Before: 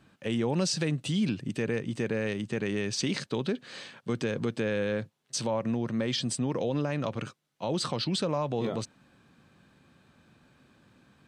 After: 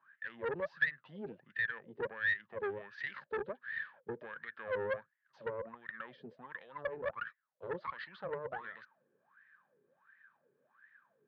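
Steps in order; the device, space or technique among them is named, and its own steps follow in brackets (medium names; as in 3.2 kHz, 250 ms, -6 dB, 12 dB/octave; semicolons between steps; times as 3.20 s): wah-wah guitar rig (wah-wah 1.4 Hz 410–1900 Hz, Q 15; valve stage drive 41 dB, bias 0.65; cabinet simulation 110–3800 Hz, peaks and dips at 150 Hz +3 dB, 290 Hz -9 dB, 430 Hz -4 dB, 730 Hz -8 dB, 1.7 kHz +8 dB, 2.6 kHz -3 dB); trim +12.5 dB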